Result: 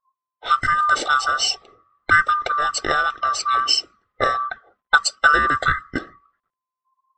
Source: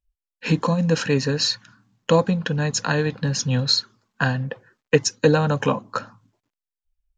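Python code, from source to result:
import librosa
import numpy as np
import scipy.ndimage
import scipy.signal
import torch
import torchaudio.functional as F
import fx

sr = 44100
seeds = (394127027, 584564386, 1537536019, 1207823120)

y = fx.band_swap(x, sr, width_hz=1000)
y = fx.env_lowpass(y, sr, base_hz=1600.0, full_db=-16.0)
y = y * librosa.db_to_amplitude(1.5)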